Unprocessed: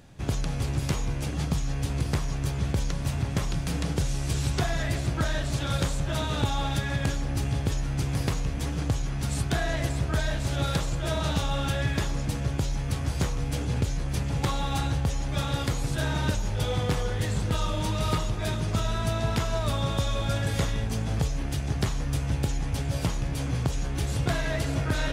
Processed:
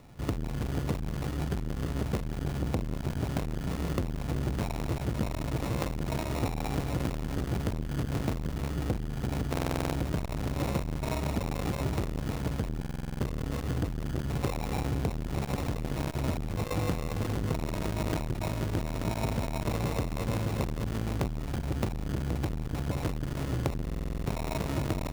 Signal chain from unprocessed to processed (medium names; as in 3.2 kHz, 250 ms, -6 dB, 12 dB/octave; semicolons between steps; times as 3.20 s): sample-and-hold 28×; frequency-shifting echo 367 ms, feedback 33%, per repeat -81 Hz, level -16 dB; buffer glitch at 9.51/12.78/23.84 s, samples 2048, times 8; transformer saturation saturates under 340 Hz